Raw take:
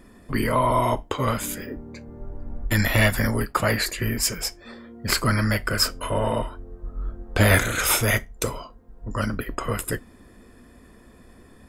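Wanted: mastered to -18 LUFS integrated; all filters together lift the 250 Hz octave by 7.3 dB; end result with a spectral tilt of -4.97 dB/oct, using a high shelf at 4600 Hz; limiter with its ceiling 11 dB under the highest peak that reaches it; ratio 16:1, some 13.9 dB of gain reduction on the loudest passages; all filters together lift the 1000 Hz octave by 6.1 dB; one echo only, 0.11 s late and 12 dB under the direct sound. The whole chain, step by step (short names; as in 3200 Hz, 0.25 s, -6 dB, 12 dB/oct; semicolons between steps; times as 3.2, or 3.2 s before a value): bell 250 Hz +8.5 dB; bell 1000 Hz +7 dB; high shelf 4600 Hz -7 dB; compressor 16:1, threshold -24 dBFS; limiter -22 dBFS; echo 0.11 s -12 dB; gain +15 dB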